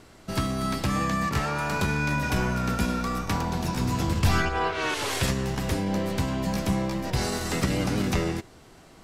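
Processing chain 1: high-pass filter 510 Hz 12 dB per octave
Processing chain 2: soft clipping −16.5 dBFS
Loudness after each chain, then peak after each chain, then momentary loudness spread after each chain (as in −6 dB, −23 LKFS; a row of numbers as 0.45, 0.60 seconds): −30.5, −28.0 LKFS; −13.5, −17.0 dBFS; 6, 3 LU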